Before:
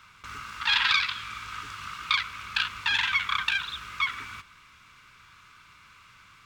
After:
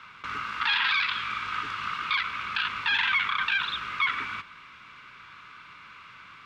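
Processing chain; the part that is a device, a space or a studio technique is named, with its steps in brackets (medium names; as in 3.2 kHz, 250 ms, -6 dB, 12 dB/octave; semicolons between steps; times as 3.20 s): DJ mixer with the lows and highs turned down (three-band isolator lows -12 dB, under 150 Hz, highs -19 dB, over 4.1 kHz; peak limiter -22 dBFS, peak gain reduction 10.5 dB); trim +7 dB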